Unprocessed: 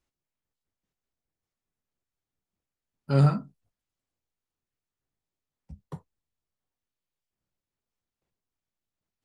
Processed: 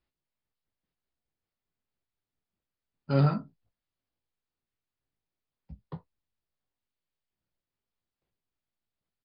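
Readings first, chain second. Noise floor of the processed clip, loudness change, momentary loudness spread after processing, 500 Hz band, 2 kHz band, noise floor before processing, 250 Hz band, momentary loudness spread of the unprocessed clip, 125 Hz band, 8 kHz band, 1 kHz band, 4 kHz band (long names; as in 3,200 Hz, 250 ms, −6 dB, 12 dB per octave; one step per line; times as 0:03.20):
below −85 dBFS, −3.0 dB, 21 LU, −1.0 dB, −1.0 dB, below −85 dBFS, −2.0 dB, 9 LU, −4.0 dB, can't be measured, −1.5 dB, −1.5 dB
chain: double-tracking delay 18 ms −10.5 dB
downsampling to 11,025 Hz
level −1.5 dB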